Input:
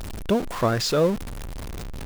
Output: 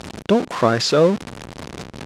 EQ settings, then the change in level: band-pass 140–7000 Hz; +6.0 dB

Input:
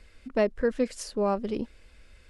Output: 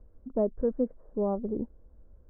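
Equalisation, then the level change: Bessel low-pass 630 Hz, order 6; distance through air 230 m; 0.0 dB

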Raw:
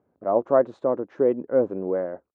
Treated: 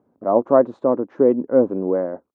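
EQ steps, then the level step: ten-band graphic EQ 125 Hz +4 dB, 250 Hz +10 dB, 500 Hz +3 dB, 1 kHz +7 dB; -2.0 dB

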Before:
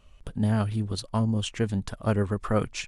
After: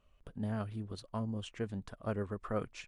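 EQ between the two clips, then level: bass shelf 270 Hz -7.5 dB; peaking EQ 860 Hz -4 dB 0.23 oct; treble shelf 2.4 kHz -11 dB; -7.0 dB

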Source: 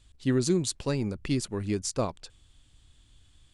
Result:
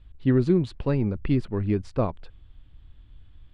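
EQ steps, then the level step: distance through air 460 m; bass shelf 75 Hz +8 dB; +4.5 dB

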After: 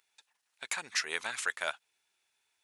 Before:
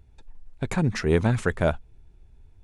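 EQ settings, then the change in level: high-pass 1.3 kHz 12 dB/octave; treble shelf 2.3 kHz +9 dB; -3.5 dB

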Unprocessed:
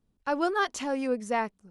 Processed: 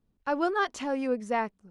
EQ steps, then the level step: treble shelf 5.6 kHz -9.5 dB; 0.0 dB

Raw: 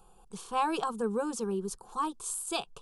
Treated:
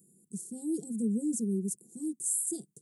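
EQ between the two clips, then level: high-pass 150 Hz 24 dB/octave; elliptic band-stop 290–7800 Hz, stop band 60 dB; +6.5 dB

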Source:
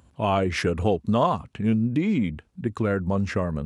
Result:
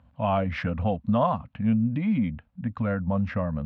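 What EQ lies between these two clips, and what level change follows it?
Chebyshev band-stop 260–540 Hz, order 2; distance through air 340 m; 0.0 dB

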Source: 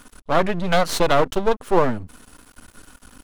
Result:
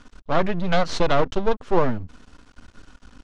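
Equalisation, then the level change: low-pass 6.3 kHz 24 dB/octave; bass shelf 180 Hz +6 dB; -3.5 dB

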